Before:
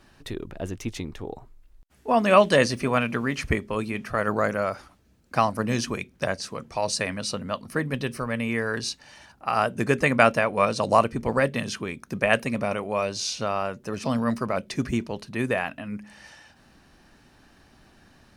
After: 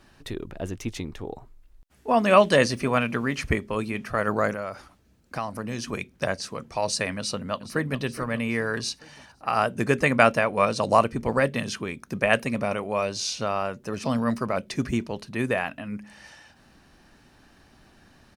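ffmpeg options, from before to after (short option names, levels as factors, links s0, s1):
-filter_complex "[0:a]asettb=1/sr,asplit=3[s0][s1][s2];[s0]atrim=end=4.534[s3];[s1]atrim=start=4.53:end=5.93,asetpts=PTS-STARTPTS,afade=t=in:d=0.004:c=qsin,afade=t=out:st=1.396:d=0.004:c=qsin,acompressor=threshold=0.0251:ratio=2:attack=3.2:release=140:knee=1:detection=peak[s4];[s2]atrim=start=5.926[s5];[s3][s4]acrossfade=d=0.004:c1=hsin:c2=qsin[s6];[s6][s5]acrossfade=d=0.004:c1=qsin:c2=hsin,asplit=2[s7][s8];[s8]afade=t=in:st=7.18:d=0.01,afade=t=out:st=8:d=0.01,aecho=0:1:420|840|1260|1680|2100:0.199526|0.0997631|0.0498816|0.0249408|0.0124704[s9];[s7][s9]amix=inputs=2:normalize=0"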